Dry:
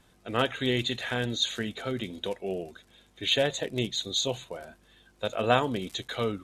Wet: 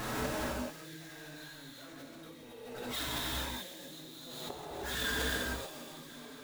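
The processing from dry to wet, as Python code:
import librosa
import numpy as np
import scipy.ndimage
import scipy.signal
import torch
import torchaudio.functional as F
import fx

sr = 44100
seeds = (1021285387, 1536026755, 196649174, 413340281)

p1 = scipy.signal.medfilt(x, 15)
p2 = fx.dereverb_blind(p1, sr, rt60_s=0.72)
p3 = fx.tilt_eq(p2, sr, slope=2.5)
p4 = fx.over_compress(p3, sr, threshold_db=-38.0, ratio=-0.5)
p5 = p3 + (p4 * librosa.db_to_amplitude(1.5))
p6 = fx.power_curve(p5, sr, exponent=0.5)
p7 = fx.pitch_keep_formants(p6, sr, semitones=4.0)
p8 = fx.gate_flip(p7, sr, shuts_db=-21.0, range_db=-30)
p9 = p8 + fx.echo_wet_highpass(p8, sr, ms=275, feedback_pct=60, hz=3300.0, wet_db=-10.0, dry=0)
p10 = fx.rev_gated(p9, sr, seeds[0], gate_ms=460, shape='flat', drr_db=-6.5)
p11 = fx.pre_swell(p10, sr, db_per_s=32.0)
y = p11 * librosa.db_to_amplitude(-5.5)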